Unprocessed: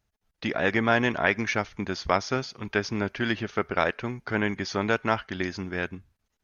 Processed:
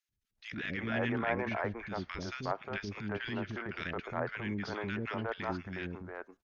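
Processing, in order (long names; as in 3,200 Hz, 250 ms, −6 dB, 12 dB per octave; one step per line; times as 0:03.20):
0:01.28–0:02.20: low-pass filter 3,700 Hz 6 dB per octave
three-band delay without the direct sound highs, lows, mids 90/360 ms, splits 360/1,500 Hz
transient designer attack −10 dB, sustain +2 dB
treble cut that deepens with the level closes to 2,700 Hz, closed at −26.5 dBFS
level −5.5 dB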